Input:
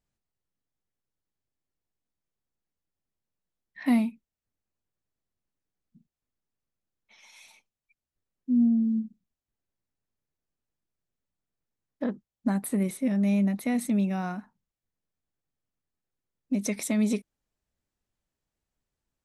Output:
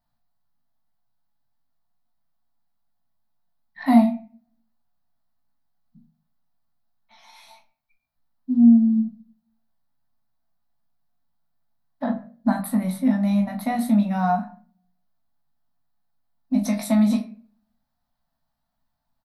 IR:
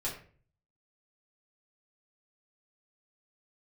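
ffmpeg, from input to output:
-filter_complex "[0:a]firequalizer=gain_entry='entry(120,0);entry(250,6);entry(360,-26);entry(670,10);entry(2600,-7);entry(4100,4);entry(6800,-11);entry(13000,3)':delay=0.05:min_phase=1,aecho=1:1:18|39:0.562|0.299,asplit=2[a][b];[1:a]atrim=start_sample=2205[c];[b][c]afir=irnorm=-1:irlink=0,volume=-6.5dB[d];[a][d]amix=inputs=2:normalize=0"

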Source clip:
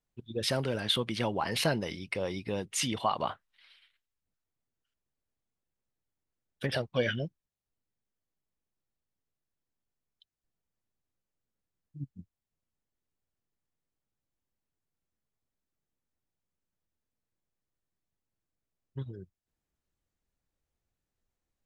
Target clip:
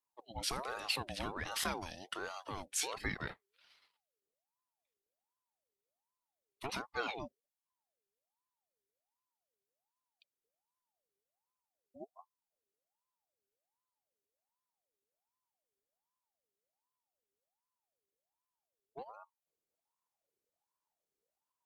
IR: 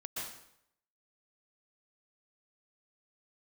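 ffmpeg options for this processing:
-af "aemphasis=mode=production:type=cd,aeval=exprs='val(0)*sin(2*PI*710*n/s+710*0.45/1.3*sin(2*PI*1.3*n/s))':c=same,volume=-6.5dB"

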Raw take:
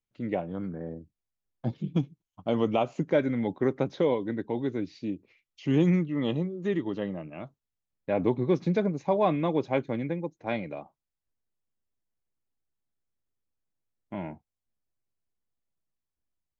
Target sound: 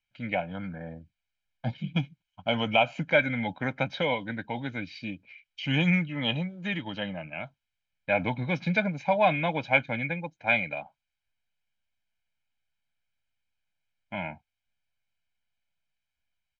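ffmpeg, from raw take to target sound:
-af "crystalizer=i=8:c=0,lowpass=f=2.5k:t=q:w=2,aecho=1:1:1.3:0.85,volume=-4dB"

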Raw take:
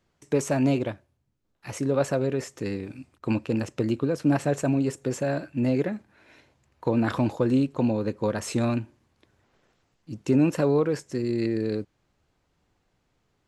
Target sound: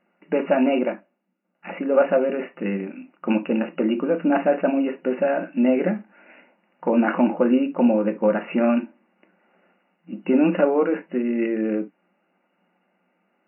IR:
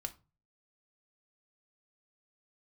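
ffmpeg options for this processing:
-filter_complex "[1:a]atrim=start_sample=2205,atrim=end_sample=3528[a];[0:a][a]afir=irnorm=-1:irlink=0,acontrast=32,afftfilt=real='re*between(b*sr/4096,170,2900)':imag='im*between(b*sr/4096,170,2900)':win_size=4096:overlap=0.75,volume=3dB"

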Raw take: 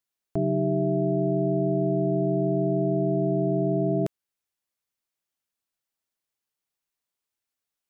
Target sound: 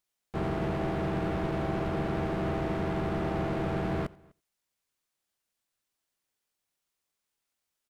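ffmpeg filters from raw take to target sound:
-filter_complex "[0:a]volume=32dB,asoftclip=hard,volume=-32dB,asplit=2[a][b];[b]aecho=0:1:88:0.075[c];[a][c]amix=inputs=2:normalize=0,asplit=3[d][e][f];[e]asetrate=22050,aresample=44100,atempo=2,volume=-2dB[g];[f]asetrate=52444,aresample=44100,atempo=0.840896,volume=-5dB[h];[d][g][h]amix=inputs=3:normalize=0,asplit=2[i][j];[j]adelay=250.7,volume=-27dB,highshelf=f=4k:g=-5.64[k];[i][k]amix=inputs=2:normalize=0"

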